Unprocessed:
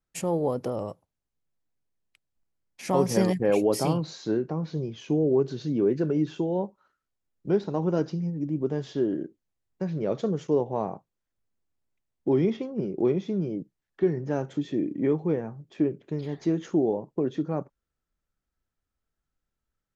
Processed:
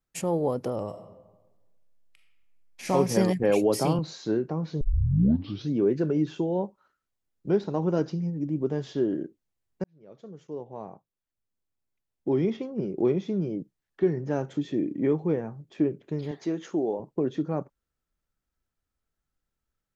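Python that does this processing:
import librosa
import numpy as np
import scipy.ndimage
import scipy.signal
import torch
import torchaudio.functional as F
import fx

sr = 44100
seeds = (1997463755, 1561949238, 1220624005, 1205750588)

y = fx.reverb_throw(x, sr, start_s=0.88, length_s=2.01, rt60_s=1.2, drr_db=1.5)
y = fx.band_squash(y, sr, depth_pct=40, at=(3.43, 3.99))
y = fx.highpass(y, sr, hz=380.0, slope=6, at=(16.31, 17.0))
y = fx.edit(y, sr, fx.tape_start(start_s=4.81, length_s=0.89),
    fx.fade_in_span(start_s=9.84, length_s=3.17), tone=tone)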